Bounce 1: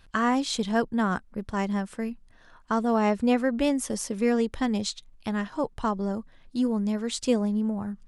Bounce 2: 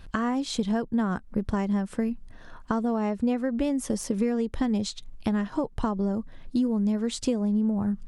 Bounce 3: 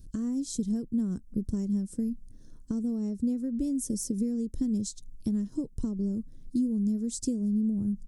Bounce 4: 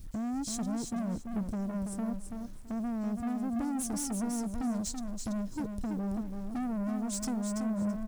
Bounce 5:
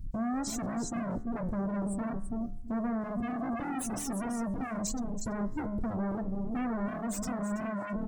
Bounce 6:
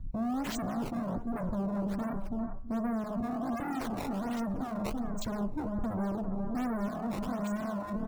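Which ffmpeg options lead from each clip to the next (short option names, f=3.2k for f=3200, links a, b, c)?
-af "acompressor=threshold=-33dB:ratio=6,tiltshelf=f=630:g=4,deesser=0.75,volume=7.5dB"
-af "firequalizer=gain_entry='entry(300,0);entry(760,-25);entry(2700,-22);entry(5500,1);entry(8000,5)':delay=0.05:min_phase=1,volume=-2.5dB"
-af "asoftclip=type=tanh:threshold=-35.5dB,acrusher=bits=10:mix=0:aa=0.000001,aecho=1:1:332|664|996:0.501|0.1|0.02,volume=3.5dB"
-af "aeval=exprs='0.0188*(abs(mod(val(0)/0.0188+3,4)-2)-1)':c=same,afftdn=nr=23:nf=-45,bandreject=f=70.55:t=h:w=4,bandreject=f=141.1:t=h:w=4,bandreject=f=211.65:t=h:w=4,bandreject=f=282.2:t=h:w=4,bandreject=f=352.75:t=h:w=4,bandreject=f=423.3:t=h:w=4,bandreject=f=493.85:t=h:w=4,bandreject=f=564.4:t=h:w=4,bandreject=f=634.95:t=h:w=4,bandreject=f=705.5:t=h:w=4,bandreject=f=776.05:t=h:w=4,bandreject=f=846.6:t=h:w=4,bandreject=f=917.15:t=h:w=4,bandreject=f=987.7:t=h:w=4,bandreject=f=1.05825k:t=h:w=4,bandreject=f=1.1288k:t=h:w=4,bandreject=f=1.19935k:t=h:w=4,bandreject=f=1.2699k:t=h:w=4,bandreject=f=1.34045k:t=h:w=4,bandreject=f=1.411k:t=h:w=4,bandreject=f=1.48155k:t=h:w=4,bandreject=f=1.5521k:t=h:w=4,bandreject=f=1.62265k:t=h:w=4,bandreject=f=1.6932k:t=h:w=4,bandreject=f=1.76375k:t=h:w=4,bandreject=f=1.8343k:t=h:w=4,bandreject=f=1.90485k:t=h:w=4,bandreject=f=1.9754k:t=h:w=4,bandreject=f=2.04595k:t=h:w=4,bandreject=f=2.1165k:t=h:w=4,bandreject=f=2.18705k:t=h:w=4,volume=6.5dB"
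-filter_complex "[0:a]acrossover=split=530|1500[a][b][c];[b]aecho=1:1:399:0.596[d];[c]acrusher=samples=16:mix=1:aa=0.000001:lfo=1:lforange=25.6:lforate=1.3[e];[a][d][e]amix=inputs=3:normalize=0"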